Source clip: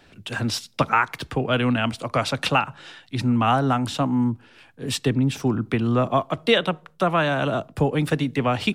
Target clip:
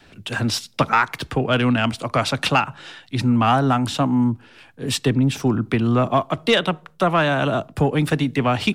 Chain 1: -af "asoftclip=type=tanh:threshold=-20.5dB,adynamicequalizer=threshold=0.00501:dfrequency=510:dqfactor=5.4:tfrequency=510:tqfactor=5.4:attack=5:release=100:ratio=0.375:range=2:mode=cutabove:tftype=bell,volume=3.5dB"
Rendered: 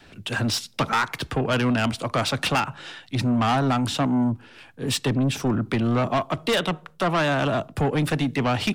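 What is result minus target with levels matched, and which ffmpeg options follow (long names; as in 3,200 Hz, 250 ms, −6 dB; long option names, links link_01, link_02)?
soft clipping: distortion +13 dB
-af "asoftclip=type=tanh:threshold=-9dB,adynamicequalizer=threshold=0.00501:dfrequency=510:dqfactor=5.4:tfrequency=510:tqfactor=5.4:attack=5:release=100:ratio=0.375:range=2:mode=cutabove:tftype=bell,volume=3.5dB"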